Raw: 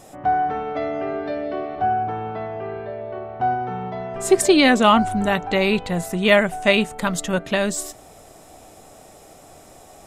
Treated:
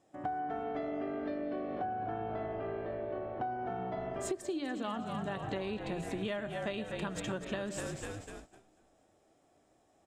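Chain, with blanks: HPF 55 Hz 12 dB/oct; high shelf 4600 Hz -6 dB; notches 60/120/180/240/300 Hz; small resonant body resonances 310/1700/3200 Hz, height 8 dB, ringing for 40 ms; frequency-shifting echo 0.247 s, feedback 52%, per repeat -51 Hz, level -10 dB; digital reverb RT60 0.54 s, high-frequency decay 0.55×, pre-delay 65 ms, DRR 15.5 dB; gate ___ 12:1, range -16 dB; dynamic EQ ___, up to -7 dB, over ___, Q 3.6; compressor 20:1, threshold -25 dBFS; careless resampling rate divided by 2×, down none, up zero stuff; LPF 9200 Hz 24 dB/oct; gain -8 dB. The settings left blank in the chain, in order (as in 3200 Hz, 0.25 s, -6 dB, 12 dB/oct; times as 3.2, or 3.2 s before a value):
-38 dBFS, 2200 Hz, -38 dBFS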